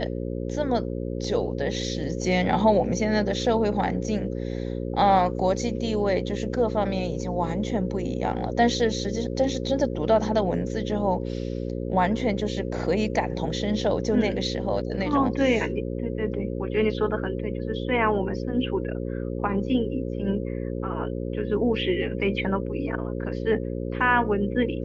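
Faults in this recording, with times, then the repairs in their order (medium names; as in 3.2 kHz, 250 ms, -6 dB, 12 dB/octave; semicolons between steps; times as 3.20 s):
buzz 60 Hz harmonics 9 -30 dBFS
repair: de-hum 60 Hz, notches 9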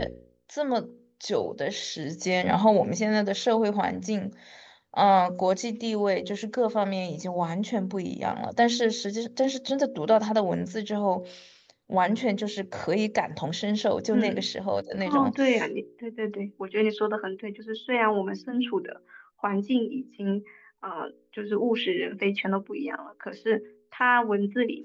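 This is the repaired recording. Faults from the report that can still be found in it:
nothing left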